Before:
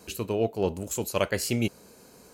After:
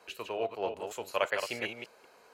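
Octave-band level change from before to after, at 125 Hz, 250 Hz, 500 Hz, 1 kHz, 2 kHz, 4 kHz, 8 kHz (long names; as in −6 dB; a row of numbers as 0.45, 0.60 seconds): −21.5, −15.5, −5.5, 0.0, 0.0, −4.0, −14.0 decibels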